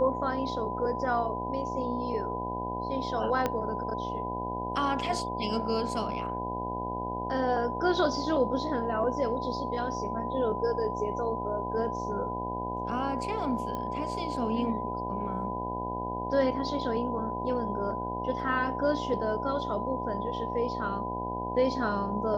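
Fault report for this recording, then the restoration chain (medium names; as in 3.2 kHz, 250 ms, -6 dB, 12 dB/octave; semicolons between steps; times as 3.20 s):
buzz 60 Hz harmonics 16 -36 dBFS
whine 1 kHz -34 dBFS
3.46 s: pop -14 dBFS
13.75 s: pop -22 dBFS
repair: de-click; de-hum 60 Hz, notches 16; band-stop 1 kHz, Q 30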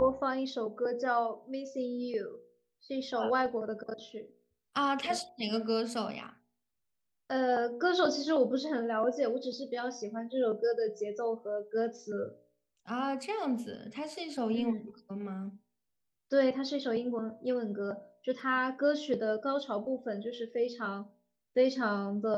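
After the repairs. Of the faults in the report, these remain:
3.46 s: pop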